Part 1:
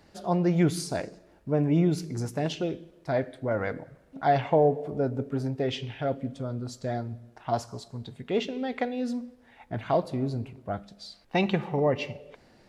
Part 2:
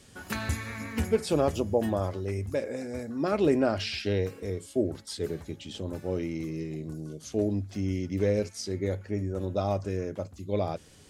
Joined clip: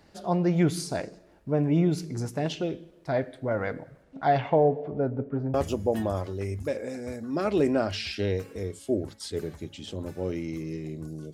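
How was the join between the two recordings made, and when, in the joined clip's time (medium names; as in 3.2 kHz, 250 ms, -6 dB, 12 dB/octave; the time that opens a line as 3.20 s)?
part 1
4.03–5.54 s: low-pass 9.6 kHz -> 1.2 kHz
5.54 s: go over to part 2 from 1.41 s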